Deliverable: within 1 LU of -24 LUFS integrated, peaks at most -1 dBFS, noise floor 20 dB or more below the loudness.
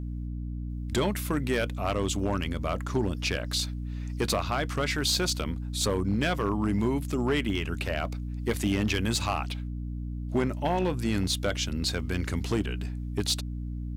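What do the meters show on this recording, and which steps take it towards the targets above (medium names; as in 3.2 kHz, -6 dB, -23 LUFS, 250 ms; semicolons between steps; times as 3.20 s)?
clipped samples 0.7%; clipping level -19.0 dBFS; hum 60 Hz; highest harmonic 300 Hz; hum level -32 dBFS; loudness -29.5 LUFS; peak level -19.0 dBFS; loudness target -24.0 LUFS
-> clip repair -19 dBFS; hum notches 60/120/180/240/300 Hz; trim +5.5 dB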